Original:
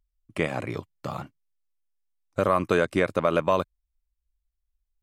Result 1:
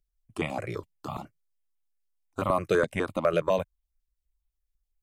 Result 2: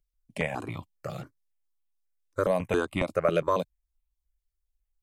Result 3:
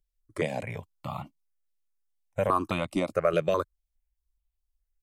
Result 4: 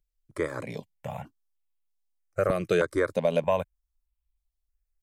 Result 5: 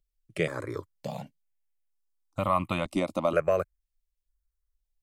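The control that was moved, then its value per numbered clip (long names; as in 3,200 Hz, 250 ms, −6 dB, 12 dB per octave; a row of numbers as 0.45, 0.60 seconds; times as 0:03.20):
step-sequenced phaser, speed: 12, 7.3, 4.8, 3.2, 2.1 Hertz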